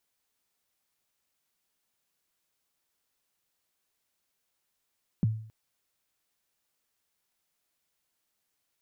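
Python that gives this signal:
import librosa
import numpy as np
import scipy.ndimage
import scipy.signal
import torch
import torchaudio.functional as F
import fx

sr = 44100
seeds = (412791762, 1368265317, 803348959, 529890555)

y = fx.drum_kick(sr, seeds[0], length_s=0.27, level_db=-19.0, start_hz=230.0, end_hz=110.0, sweep_ms=21.0, decay_s=0.54, click=False)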